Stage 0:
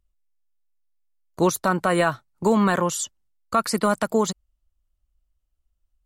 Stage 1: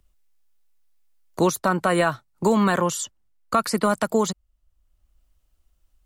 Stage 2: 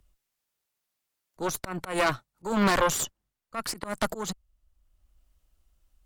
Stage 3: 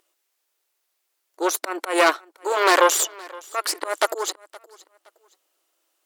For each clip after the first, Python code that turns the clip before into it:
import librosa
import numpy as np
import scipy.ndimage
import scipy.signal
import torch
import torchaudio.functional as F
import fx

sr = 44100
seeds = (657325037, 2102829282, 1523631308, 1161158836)

y1 = fx.band_squash(x, sr, depth_pct=40)
y2 = fx.auto_swell(y1, sr, attack_ms=251.0)
y2 = fx.cheby_harmonics(y2, sr, harmonics=(5, 6, 7), levels_db=(-12, -9, -23), full_scale_db=-8.5)
y2 = y2 * 10.0 ** (-5.5 / 20.0)
y3 = fx.brickwall_highpass(y2, sr, low_hz=300.0)
y3 = fx.echo_feedback(y3, sr, ms=518, feedback_pct=29, wet_db=-22.5)
y3 = y3 * 10.0 ** (8.0 / 20.0)